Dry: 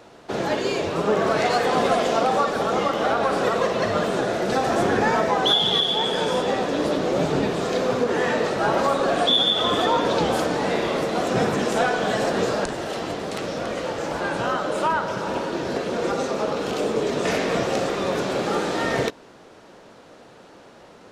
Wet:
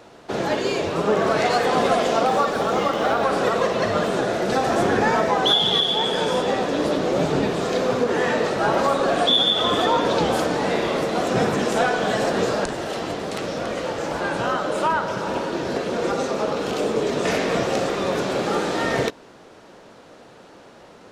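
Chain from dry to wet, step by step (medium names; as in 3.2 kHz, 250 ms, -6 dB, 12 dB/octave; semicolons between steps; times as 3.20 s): 2.26–3.25 s: companded quantiser 8-bit; trim +1 dB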